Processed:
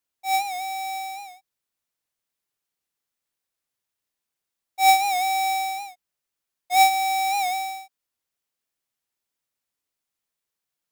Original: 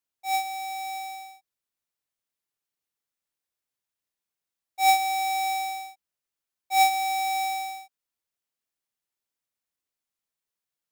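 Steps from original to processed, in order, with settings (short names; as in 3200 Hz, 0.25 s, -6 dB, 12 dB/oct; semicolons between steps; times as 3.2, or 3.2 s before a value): record warp 78 rpm, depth 100 cents; gain +3.5 dB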